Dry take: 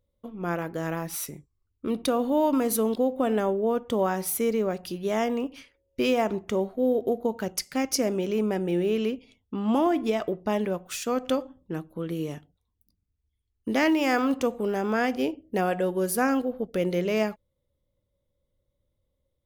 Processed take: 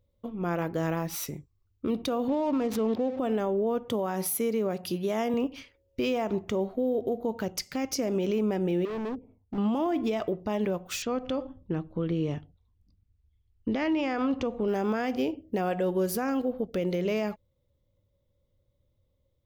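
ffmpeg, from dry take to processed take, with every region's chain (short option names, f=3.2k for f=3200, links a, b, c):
-filter_complex "[0:a]asettb=1/sr,asplit=3[a][b][c];[a]atrim=end=2.284[d];[b]atrim=start=2.28:end=3.19,asetpts=PTS-STARTPTS,afade=t=in:d=0.004:c=qsin,afade=t=out:st=0.906:d=0.004:c=qsin,aeval=exprs='val(0)+0.5*0.00891*sgn(val(0))':c=same,highpass=f=79:w=0.5412,highpass=f=79:w=1.3066,adynamicsmooth=sensitivity=6.5:basefreq=1.1k[e];[c]atrim=start=3.186[f];[d][e]acrossfade=d=0.004:c1=hsin:c2=qsin[g];[g][f]acrossfade=d=0.004:c1=qsin:c2=hsin,asettb=1/sr,asplit=3[h][i][j];[h]atrim=end=3.884[k];[i]atrim=start=3.88:end=5.34,asetpts=PTS-STARTPTS,afade=t=in:d=0.004:c=qsin,afade=t=out:st=1.456:d=0.004:c=qsin,highpass=f=100:w=0.5412,highpass=f=100:w=1.3066,equalizer=f=11k:w=2.6:g=11.5[l];[j]atrim=start=5.336[m];[k][l]acrossfade=d=0.004:c1=hsin:c2=qsin[n];[n][m]acrossfade=d=0.004:c1=qsin:c2=hsin,asettb=1/sr,asplit=3[o][p][q];[o]atrim=end=8.854[r];[p]atrim=start=8.85:end=9.58,asetpts=PTS-STARTPTS,afade=t=in:d=0.004:c=qsin,afade=t=out:st=0.726:d=0.004:c=qsin,lowpass=f=1.1k:w=0.5412,lowpass=f=1.1k:w=1.3066,asoftclip=type=hard:threshold=-33.5dB[s];[q]atrim=start=9.576[t];[r][s]acrossfade=d=0.004:c1=hsin:c2=qsin[u];[u][t]acrossfade=d=0.004:c1=qsin:c2=hsin,asettb=1/sr,asplit=3[v][w][x];[v]atrim=end=11.024[y];[w]atrim=start=11.02:end=14.68,asetpts=PTS-STARTPTS,afade=t=in:d=0.004:c=qsin,afade=t=out:st=3.656:d=0.004:c=qsin,lowpass=4.3k,lowshelf=f=74:g=10[z];[x]atrim=start=14.676[aa];[y][z]acrossfade=d=0.004:c1=hsin:c2=qsin[ab];[ab][aa]acrossfade=d=0.004:c1=qsin:c2=hsin,equalizer=f=100:t=o:w=0.67:g=6,equalizer=f=1.6k:t=o:w=0.67:g=-3,equalizer=f=10k:t=o:w=0.67:g=-10,alimiter=limit=-22.5dB:level=0:latency=1:release=113,volume=2.5dB"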